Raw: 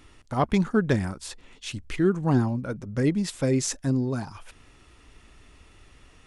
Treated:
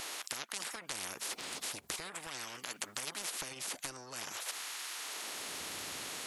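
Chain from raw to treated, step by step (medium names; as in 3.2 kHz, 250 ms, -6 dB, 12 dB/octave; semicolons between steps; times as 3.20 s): bass shelf 110 Hz -10 dB; formant shift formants +3 st; LFO high-pass sine 0.47 Hz 280–1700 Hz; compression 5:1, threshold -38 dBFS, peak gain reduction 18.5 dB; spectrum-flattening compressor 10:1; trim +8.5 dB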